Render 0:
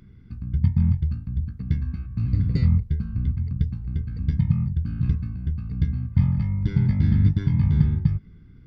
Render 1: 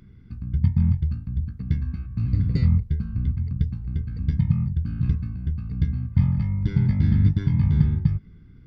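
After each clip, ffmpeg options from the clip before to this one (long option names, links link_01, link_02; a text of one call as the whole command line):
ffmpeg -i in.wav -af anull out.wav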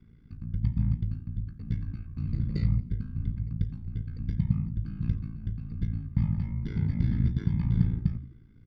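ffmpeg -i in.wav -filter_complex "[0:a]bandreject=frequency=102.5:width_type=h:width=4,bandreject=frequency=205:width_type=h:width=4,bandreject=frequency=307.5:width_type=h:width=4,bandreject=frequency=410:width_type=h:width=4,bandreject=frequency=512.5:width_type=h:width=4,bandreject=frequency=615:width_type=h:width=4,bandreject=frequency=717.5:width_type=h:width=4,bandreject=frequency=820:width_type=h:width=4,bandreject=frequency=922.5:width_type=h:width=4,bandreject=frequency=1025:width_type=h:width=4,bandreject=frequency=1127.5:width_type=h:width=4,bandreject=frequency=1230:width_type=h:width=4,bandreject=frequency=1332.5:width_type=h:width=4,bandreject=frequency=1435:width_type=h:width=4,bandreject=frequency=1537.5:width_type=h:width=4,bandreject=frequency=1640:width_type=h:width=4,bandreject=frequency=1742.5:width_type=h:width=4,bandreject=frequency=1845:width_type=h:width=4,bandreject=frequency=1947.5:width_type=h:width=4,bandreject=frequency=2050:width_type=h:width=4,bandreject=frequency=2152.5:width_type=h:width=4,bandreject=frequency=2255:width_type=h:width=4,bandreject=frequency=2357.5:width_type=h:width=4,bandreject=frequency=2460:width_type=h:width=4,bandreject=frequency=2562.5:width_type=h:width=4,bandreject=frequency=2665:width_type=h:width=4,bandreject=frequency=2767.5:width_type=h:width=4,bandreject=frequency=2870:width_type=h:width=4,bandreject=frequency=2972.5:width_type=h:width=4,bandreject=frequency=3075:width_type=h:width=4,bandreject=frequency=3177.5:width_type=h:width=4,bandreject=frequency=3280:width_type=h:width=4,bandreject=frequency=3382.5:width_type=h:width=4,bandreject=frequency=3485:width_type=h:width=4,bandreject=frequency=3587.5:width_type=h:width=4,bandreject=frequency=3690:width_type=h:width=4,bandreject=frequency=3792.5:width_type=h:width=4,bandreject=frequency=3895:width_type=h:width=4,aeval=exprs='val(0)*sin(2*PI*28*n/s)':channel_layout=same,asplit=4[link_01][link_02][link_03][link_04];[link_02]adelay=86,afreqshift=55,volume=-23dB[link_05];[link_03]adelay=172,afreqshift=110,volume=-30.7dB[link_06];[link_04]adelay=258,afreqshift=165,volume=-38.5dB[link_07];[link_01][link_05][link_06][link_07]amix=inputs=4:normalize=0,volume=-3.5dB" out.wav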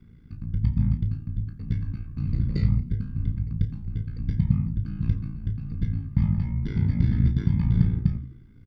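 ffmpeg -i in.wav -filter_complex "[0:a]asplit=2[link_01][link_02];[link_02]adelay=30,volume=-10.5dB[link_03];[link_01][link_03]amix=inputs=2:normalize=0,volume=4dB" out.wav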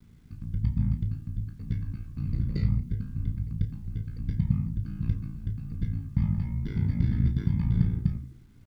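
ffmpeg -i in.wav -af "acrusher=bits=10:mix=0:aa=0.000001,volume=-3.5dB" out.wav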